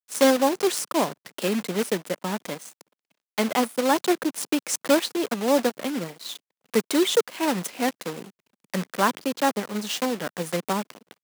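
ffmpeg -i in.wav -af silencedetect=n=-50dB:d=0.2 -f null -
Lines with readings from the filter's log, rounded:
silence_start: 2.81
silence_end: 3.38 | silence_duration: 0.56
silence_start: 6.37
silence_end: 6.66 | silence_duration: 0.29
silence_start: 8.30
silence_end: 8.64 | silence_duration: 0.34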